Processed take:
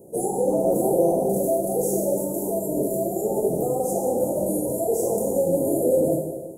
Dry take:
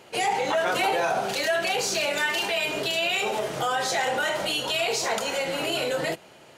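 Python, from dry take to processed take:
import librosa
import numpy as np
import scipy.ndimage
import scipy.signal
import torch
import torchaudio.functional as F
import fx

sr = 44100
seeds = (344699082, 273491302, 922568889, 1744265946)

y = scipy.signal.sosfilt(scipy.signal.cheby2(4, 80, [1700.0, 3400.0], 'bandstop', fs=sr, output='sos'), x)
y = fx.rev_plate(y, sr, seeds[0], rt60_s=1.2, hf_ratio=0.95, predelay_ms=0, drr_db=-1.5)
y = y * librosa.db_to_amplitude(7.5)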